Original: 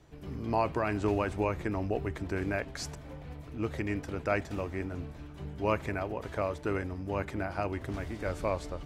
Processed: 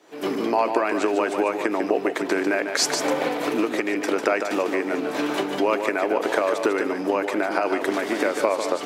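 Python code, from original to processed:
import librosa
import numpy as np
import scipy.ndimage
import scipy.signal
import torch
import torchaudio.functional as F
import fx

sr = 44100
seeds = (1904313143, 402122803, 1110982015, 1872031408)

y = fx.recorder_agc(x, sr, target_db=-17.0, rise_db_per_s=69.0, max_gain_db=30)
y = scipy.signal.sosfilt(scipy.signal.butter(4, 300.0, 'highpass', fs=sr, output='sos'), y)
y = y + 10.0 ** (-7.0 / 20.0) * np.pad(y, (int(148 * sr / 1000.0), 0))[:len(y)]
y = y * librosa.db_to_amplitude(6.5)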